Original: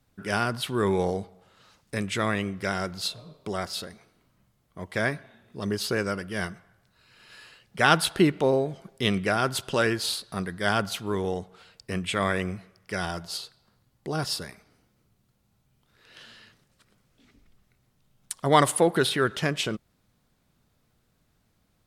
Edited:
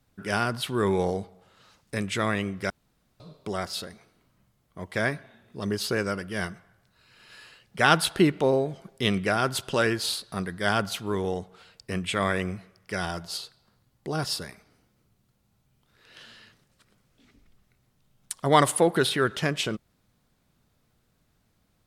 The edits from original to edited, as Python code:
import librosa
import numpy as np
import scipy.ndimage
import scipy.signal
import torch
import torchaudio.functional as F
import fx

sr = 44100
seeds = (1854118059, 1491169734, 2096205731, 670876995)

y = fx.edit(x, sr, fx.room_tone_fill(start_s=2.7, length_s=0.5), tone=tone)